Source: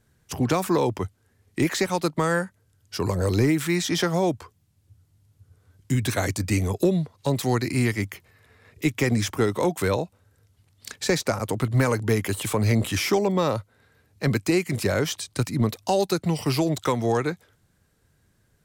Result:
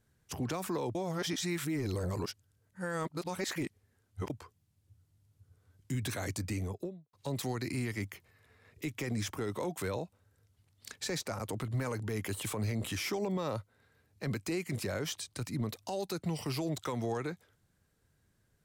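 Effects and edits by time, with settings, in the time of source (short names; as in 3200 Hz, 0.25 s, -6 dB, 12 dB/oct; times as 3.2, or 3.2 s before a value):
0.95–4.3 reverse
6.36–7.13 studio fade out
whole clip: limiter -18.5 dBFS; gain -8 dB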